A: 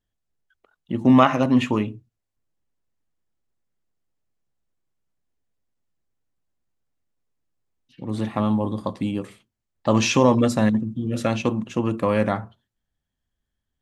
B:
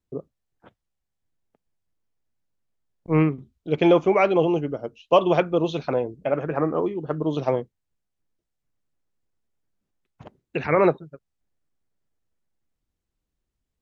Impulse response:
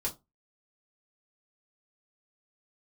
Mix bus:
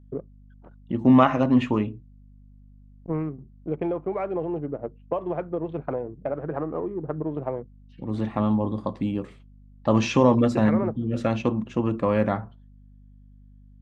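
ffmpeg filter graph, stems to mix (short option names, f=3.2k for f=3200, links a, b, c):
-filter_complex "[0:a]lowpass=7.2k,volume=-1dB[a];[1:a]adynamicsmooth=sensitivity=6:basefreq=950,lowpass=1.7k,acompressor=threshold=-27dB:ratio=6,volume=2dB[b];[a][b]amix=inputs=2:normalize=0,highshelf=f=2.7k:g=-9.5,aeval=exprs='val(0)+0.00355*(sin(2*PI*50*n/s)+sin(2*PI*2*50*n/s)/2+sin(2*PI*3*50*n/s)/3+sin(2*PI*4*50*n/s)/4+sin(2*PI*5*50*n/s)/5)':c=same"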